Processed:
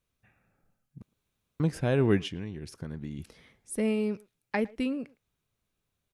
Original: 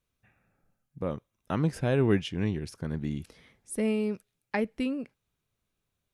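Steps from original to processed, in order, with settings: 1.02–1.60 s: room tone; 2.28–3.19 s: compression 6:1, threshold -34 dBFS, peak gain reduction 10 dB; speakerphone echo 110 ms, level -22 dB

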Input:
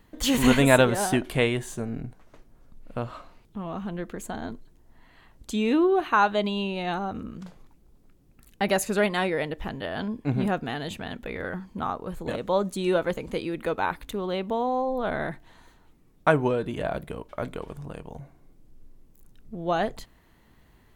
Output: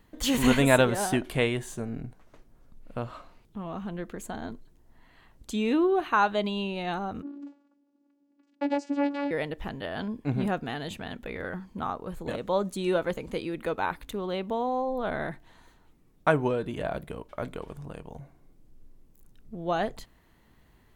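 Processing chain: 7.22–9.31 s: vocoder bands 8, saw 284 Hz; trim -2.5 dB

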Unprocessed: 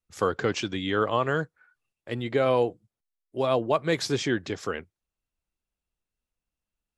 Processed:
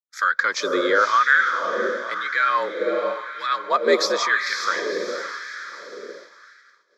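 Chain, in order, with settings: frequency shift +75 Hz; static phaser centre 2.8 kHz, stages 6; echo that smears into a reverb 520 ms, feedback 48%, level -5.5 dB; LFO high-pass sine 0.95 Hz 440–1600 Hz; expander -48 dBFS; trim +8.5 dB

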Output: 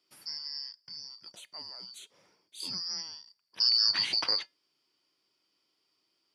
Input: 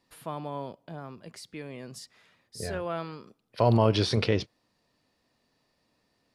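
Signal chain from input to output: four frequency bands reordered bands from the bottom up 2341; high-pass 100 Hz 24 dB/octave; feedback comb 190 Hz, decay 0.2 s, harmonics odd, mix 40%

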